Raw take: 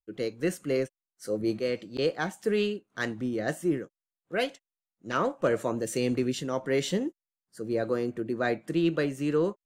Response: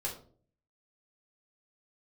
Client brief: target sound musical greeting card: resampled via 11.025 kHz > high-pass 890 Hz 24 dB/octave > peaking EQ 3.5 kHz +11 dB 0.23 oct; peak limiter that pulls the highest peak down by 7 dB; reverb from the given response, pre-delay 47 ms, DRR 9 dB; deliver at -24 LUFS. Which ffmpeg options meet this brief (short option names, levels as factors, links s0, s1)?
-filter_complex "[0:a]alimiter=limit=0.0794:level=0:latency=1,asplit=2[s0][s1];[1:a]atrim=start_sample=2205,adelay=47[s2];[s1][s2]afir=irnorm=-1:irlink=0,volume=0.266[s3];[s0][s3]amix=inputs=2:normalize=0,aresample=11025,aresample=44100,highpass=f=890:w=0.5412,highpass=f=890:w=1.3066,equalizer=f=3500:t=o:w=0.23:g=11,volume=5.96"